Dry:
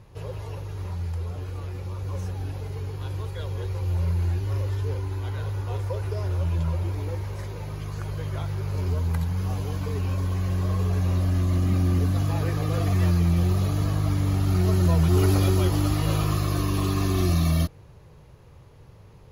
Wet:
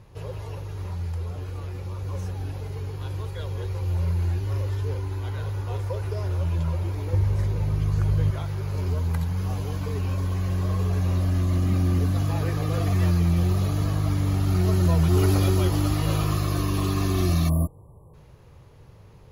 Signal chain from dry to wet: 7.13–8.31 low shelf 240 Hz +11.5 dB; 17.49–18.14 spectral delete 1200–7500 Hz

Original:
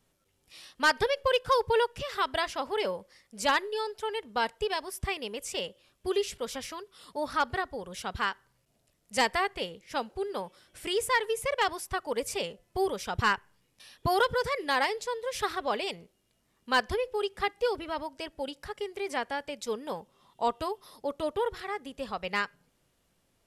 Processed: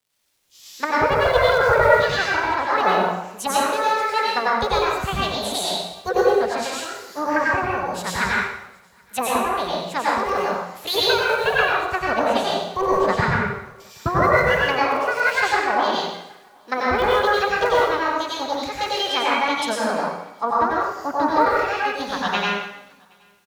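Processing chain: HPF 78 Hz; treble ducked by the level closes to 560 Hz, closed at -24 dBFS; AGC gain up to 7.5 dB; crackle 310/s -46 dBFS; formant shift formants +5 st; echo 0.772 s -23 dB; plate-style reverb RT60 0.98 s, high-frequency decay 1×, pre-delay 80 ms, DRR -5.5 dB; three-band expander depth 40%

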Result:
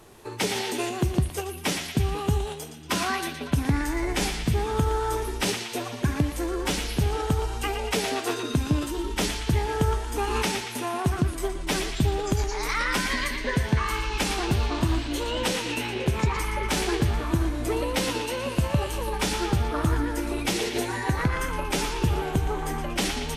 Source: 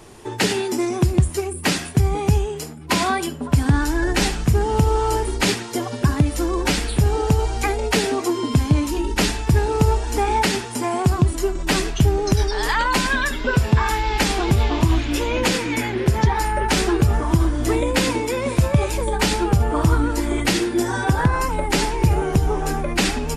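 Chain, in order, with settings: narrowing echo 0.117 s, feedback 67%, band-pass 2500 Hz, level -5 dB; formant shift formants +3 st; gain -7 dB

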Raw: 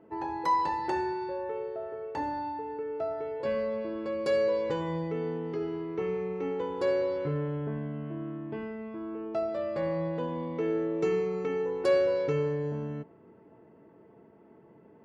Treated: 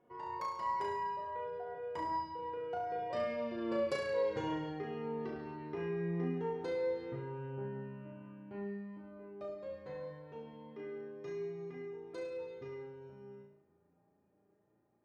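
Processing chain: Doppler pass-by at 3.99, 32 m/s, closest 22 m; bell 310 Hz -4 dB 1.1 oct; compressor 2.5:1, threshold -43 dBFS, peak gain reduction 12.5 dB; flange 0.26 Hz, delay 7.2 ms, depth 5.8 ms, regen +52%; flutter echo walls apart 6 m, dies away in 0.62 s; gain +8.5 dB

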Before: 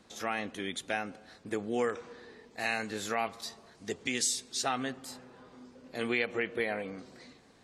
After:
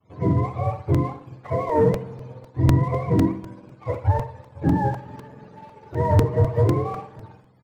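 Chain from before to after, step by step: spectrum mirrored in octaves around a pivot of 470 Hz; expander -57 dBFS; sample leveller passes 1; feedback echo 62 ms, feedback 34%, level -9 dB; crackling interface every 0.25 s, samples 128, repeat, from 0.94; gain +9 dB

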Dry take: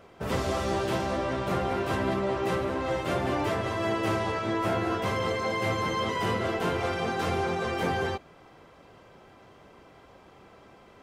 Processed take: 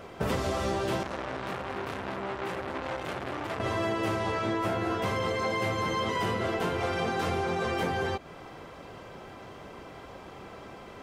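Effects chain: compressor 10:1, threshold -34 dBFS, peak gain reduction 11 dB; 1.03–3.6 core saturation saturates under 1600 Hz; gain +8 dB

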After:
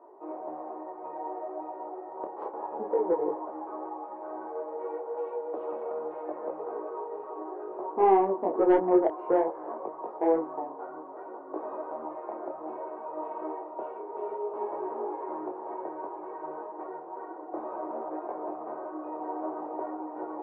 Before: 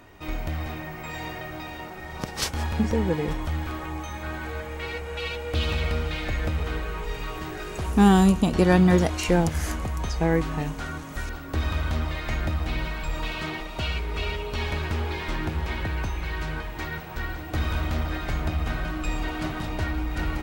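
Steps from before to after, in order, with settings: Chebyshev band-pass 350–1000 Hz, order 3; soft clip -15.5 dBFS, distortion -19 dB; detuned doubles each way 21 cents; gain +6 dB

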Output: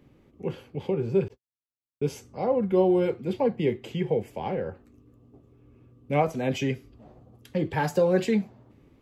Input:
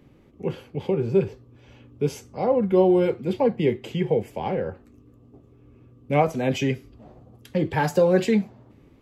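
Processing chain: 1.28–2.14 gate -40 dBFS, range -59 dB; gain -3.5 dB

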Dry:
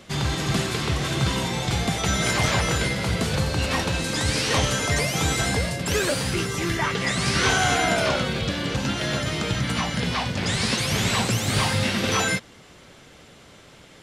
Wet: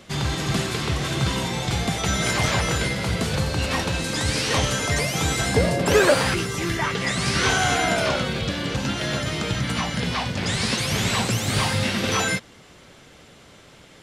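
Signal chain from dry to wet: 5.55–6.33 bell 310 Hz -> 1300 Hz +10.5 dB 2.8 oct

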